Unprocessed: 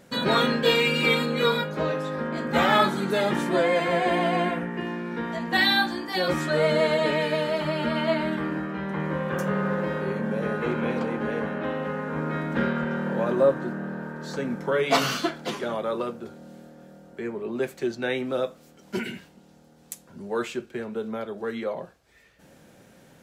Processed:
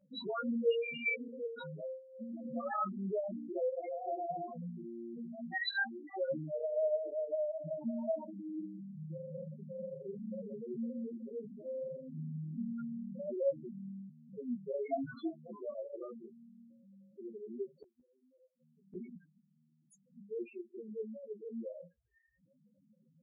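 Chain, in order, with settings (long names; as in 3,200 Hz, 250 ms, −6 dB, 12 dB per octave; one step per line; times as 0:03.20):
spectral peaks only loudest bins 2
0:17.77–0:18.95: gate with flip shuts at −32 dBFS, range −31 dB
multi-voice chorus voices 2, 0.16 Hz, delay 15 ms, depth 3.6 ms
level −5.5 dB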